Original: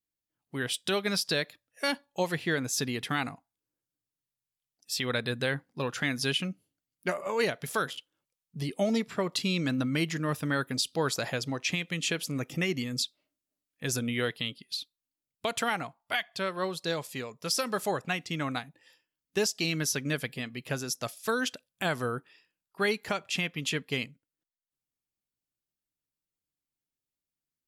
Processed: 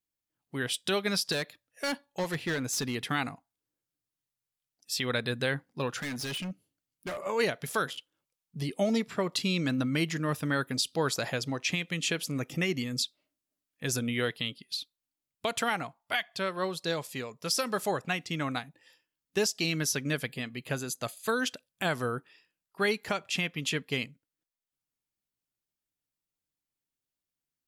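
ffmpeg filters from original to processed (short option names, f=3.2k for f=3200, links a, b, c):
-filter_complex "[0:a]asettb=1/sr,asplit=3[a][b][c];[a]atrim=end=1.324[d];[b]atrim=start=1.32:end=2.95,asetpts=PTS-STARTPTS,afade=t=in:d=0.004:c=qsin,afade=t=out:st=1.626:d=0.004:c=qsin,asoftclip=type=hard:threshold=-26.5dB[e];[c]atrim=start=2.946[f];[d][e]acrossfade=d=0.004:c1=hsin:c2=qsin[g];[g][f]acrossfade=d=0.004:c1=qsin:c2=hsin,asettb=1/sr,asplit=3[h][i][j];[h]atrim=end=6.004[k];[i]atrim=start=6:end=7.25,asetpts=PTS-STARTPTS,afade=t=in:d=0.004:c=qsin,afade=t=out:st=1.246:d=0.004:c=qsin,asoftclip=type=hard:threshold=-33dB[l];[j]atrim=start=7.246[m];[k][l]acrossfade=d=0.004:c1=hsin:c2=qsin[n];[n][m]acrossfade=d=0.004:c1=qsin:c2=hsin,asettb=1/sr,asplit=3[o][p][q];[o]atrim=end=20.264[r];[p]atrim=start=20.26:end=21.4,asetpts=PTS-STARTPTS,afade=t=in:d=0.004:c=qsin,afade=t=out:st=1.136:d=0.004:c=qsin,asuperstop=centerf=5500:order=8:qfactor=6.4[s];[q]atrim=start=21.396[t];[r][s]acrossfade=d=0.004:c1=hsin:c2=qsin[u];[u][t]acrossfade=d=0.004:c1=qsin:c2=hsin"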